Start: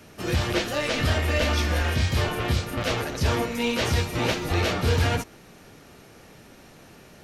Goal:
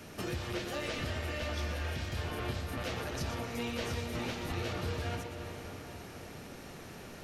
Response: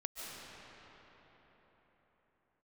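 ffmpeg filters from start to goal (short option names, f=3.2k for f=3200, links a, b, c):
-filter_complex "[0:a]acompressor=threshold=-36dB:ratio=6,asplit=2[a][b];[1:a]atrim=start_sample=2205,adelay=119[c];[b][c]afir=irnorm=-1:irlink=0,volume=-5dB[d];[a][d]amix=inputs=2:normalize=0"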